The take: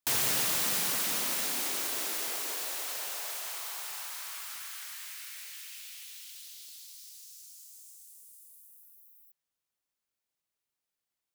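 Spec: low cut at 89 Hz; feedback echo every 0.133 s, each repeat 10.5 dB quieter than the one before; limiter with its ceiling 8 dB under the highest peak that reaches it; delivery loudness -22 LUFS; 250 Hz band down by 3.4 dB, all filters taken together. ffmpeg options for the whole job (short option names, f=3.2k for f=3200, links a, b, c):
-af "highpass=89,equalizer=f=250:t=o:g=-4.5,alimiter=limit=-23.5dB:level=0:latency=1,aecho=1:1:133|266|399:0.299|0.0896|0.0269,volume=11.5dB"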